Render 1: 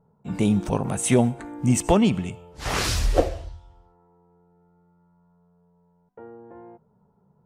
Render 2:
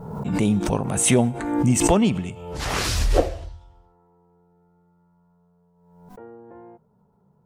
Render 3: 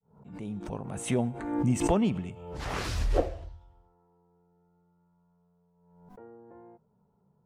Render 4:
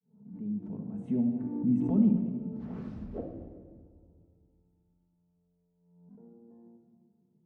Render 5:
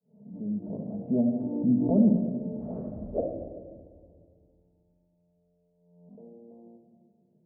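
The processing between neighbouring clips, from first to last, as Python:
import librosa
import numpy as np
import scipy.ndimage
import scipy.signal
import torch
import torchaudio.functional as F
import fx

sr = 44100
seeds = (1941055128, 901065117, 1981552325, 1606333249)

y1 = fx.pre_swell(x, sr, db_per_s=47.0)
y2 = fx.fade_in_head(y1, sr, length_s=1.56)
y2 = fx.high_shelf(y2, sr, hz=3400.0, db=-9.5)
y2 = y2 * librosa.db_to_amplitude(-7.0)
y3 = fx.bandpass_q(y2, sr, hz=220.0, q=2.5)
y3 = fx.room_shoebox(y3, sr, seeds[0], volume_m3=2200.0, walls='mixed', distance_m=1.5)
y4 = fx.lowpass_res(y3, sr, hz=610.0, q=6.3)
y4 = y4 * librosa.db_to_amplitude(1.5)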